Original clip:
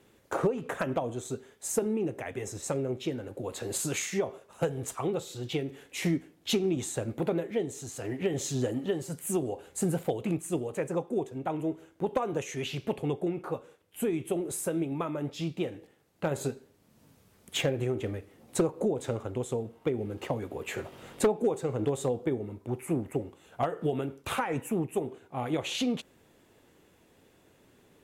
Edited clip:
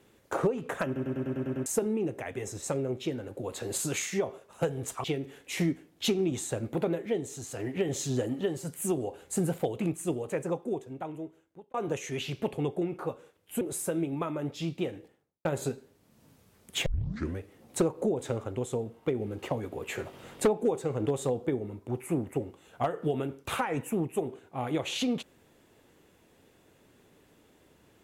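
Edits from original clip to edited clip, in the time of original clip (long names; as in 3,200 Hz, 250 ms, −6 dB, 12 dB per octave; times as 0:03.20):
0:00.86: stutter in place 0.10 s, 8 plays
0:05.04–0:05.49: remove
0:10.88–0:12.19: fade out
0:14.06–0:14.40: remove
0:15.75–0:16.24: fade out and dull
0:17.65: tape start 0.53 s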